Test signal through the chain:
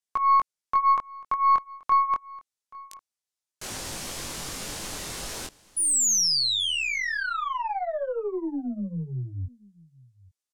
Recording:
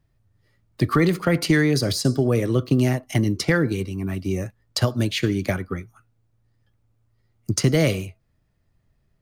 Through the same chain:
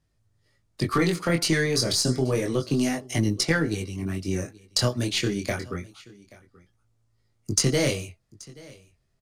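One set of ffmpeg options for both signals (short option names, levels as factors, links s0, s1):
-filter_complex "[0:a]lowpass=9500,bass=f=250:g=-3,treble=f=4000:g=9,flanger=delay=18.5:depth=6.2:speed=0.29,aeval=exprs='0.473*(cos(1*acos(clip(val(0)/0.473,-1,1)))-cos(1*PI/2))+0.0106*(cos(8*acos(clip(val(0)/0.473,-1,1)))-cos(8*PI/2))':c=same,asplit=2[s0][s1];[s1]aecho=0:1:830:0.075[s2];[s0][s2]amix=inputs=2:normalize=0"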